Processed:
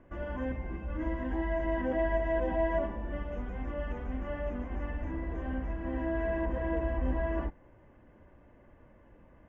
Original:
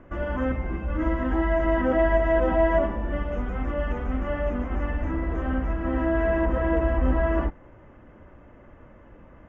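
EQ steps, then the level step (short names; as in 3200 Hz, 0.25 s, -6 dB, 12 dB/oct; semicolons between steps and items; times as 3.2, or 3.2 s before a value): notch 1300 Hz, Q 7.2; -8.5 dB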